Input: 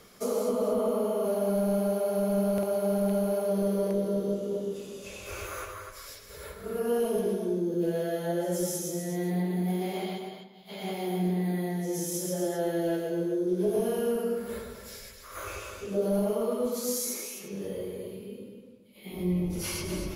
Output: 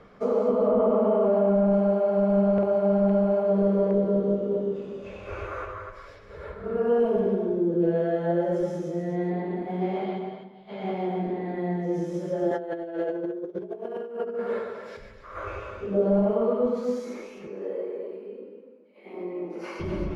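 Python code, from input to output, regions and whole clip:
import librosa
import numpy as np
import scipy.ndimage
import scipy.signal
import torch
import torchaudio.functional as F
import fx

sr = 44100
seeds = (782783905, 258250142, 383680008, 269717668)

y = fx.chain(x, sr, fx.peak_eq(hz=6600.0, db=-10.5, octaves=1.2),
    fx.hum_notches(base_hz=60, count=9),
    fx.env_flatten(amount_pct=70), at=(0.66, 1.73))
y = fx.chain(y, sr, fx.highpass(hz=350.0, slope=12),
    fx.over_compress(threshold_db=-35.0, ratio=-0.5), at=(12.51, 14.97))
y = fx.chain(y, sr, fx.highpass(hz=300.0, slope=24),
    fx.peak_eq(hz=3400.0, db=-10.5, octaves=0.29), at=(17.47, 19.8))
y = scipy.signal.sosfilt(scipy.signal.butter(2, 1600.0, 'lowpass', fs=sr, output='sos'), y)
y = fx.hum_notches(y, sr, base_hz=60, count=7)
y = F.gain(torch.from_numpy(y), 5.5).numpy()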